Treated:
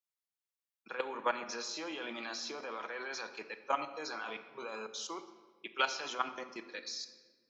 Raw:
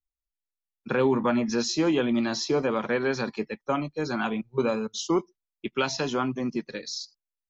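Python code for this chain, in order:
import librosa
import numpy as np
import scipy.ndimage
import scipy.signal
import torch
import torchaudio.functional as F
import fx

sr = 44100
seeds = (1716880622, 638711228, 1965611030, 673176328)

y = scipy.signal.sosfilt(scipy.signal.butter(2, 720.0, 'highpass', fs=sr, output='sos'), x)
y = fx.level_steps(y, sr, step_db=14)
y = fx.room_shoebox(y, sr, seeds[0], volume_m3=1400.0, walls='mixed', distance_m=0.66)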